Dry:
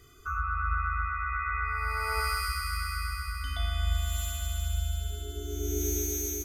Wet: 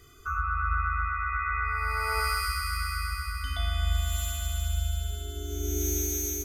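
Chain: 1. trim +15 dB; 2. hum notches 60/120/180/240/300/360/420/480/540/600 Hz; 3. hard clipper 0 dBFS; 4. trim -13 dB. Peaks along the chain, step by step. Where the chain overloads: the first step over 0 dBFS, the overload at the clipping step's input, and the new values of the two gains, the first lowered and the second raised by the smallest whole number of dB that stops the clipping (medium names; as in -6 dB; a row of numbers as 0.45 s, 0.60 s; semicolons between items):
-2.0 dBFS, -2.0 dBFS, -2.0 dBFS, -15.0 dBFS; nothing clips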